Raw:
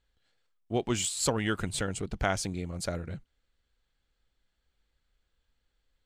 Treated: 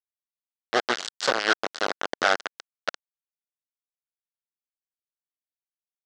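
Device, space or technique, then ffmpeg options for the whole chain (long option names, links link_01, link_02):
hand-held game console: -filter_complex "[0:a]asplit=3[link_01][link_02][link_03];[link_01]afade=type=out:start_time=0.87:duration=0.02[link_04];[link_02]asplit=2[link_05][link_06];[link_06]adelay=21,volume=-10dB[link_07];[link_05][link_07]amix=inputs=2:normalize=0,afade=type=in:start_time=0.87:duration=0.02,afade=type=out:start_time=2.39:duration=0.02[link_08];[link_03]afade=type=in:start_time=2.39:duration=0.02[link_09];[link_04][link_08][link_09]amix=inputs=3:normalize=0,acrusher=bits=3:mix=0:aa=0.000001,highpass=480,equalizer=frequency=940:width_type=q:width=4:gain=-6,equalizer=frequency=1500:width_type=q:width=4:gain=5,equalizer=frequency=2400:width_type=q:width=4:gain=-7,lowpass=frequency=5500:width=0.5412,lowpass=frequency=5500:width=1.3066,volume=7.5dB"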